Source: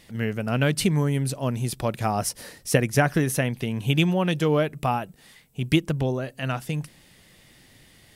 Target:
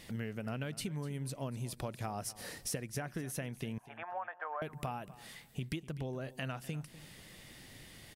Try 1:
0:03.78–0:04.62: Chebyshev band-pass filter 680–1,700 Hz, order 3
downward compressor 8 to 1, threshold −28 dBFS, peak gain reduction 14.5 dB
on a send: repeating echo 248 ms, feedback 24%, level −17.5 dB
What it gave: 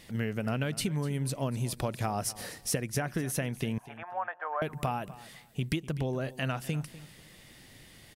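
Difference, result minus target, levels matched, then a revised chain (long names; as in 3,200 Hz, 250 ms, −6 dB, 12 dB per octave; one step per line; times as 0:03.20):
downward compressor: peak gain reduction −8 dB
0:03.78–0:04.62: Chebyshev band-pass filter 680–1,700 Hz, order 3
downward compressor 8 to 1, threshold −37 dBFS, peak gain reduction 22 dB
on a send: repeating echo 248 ms, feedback 24%, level −17.5 dB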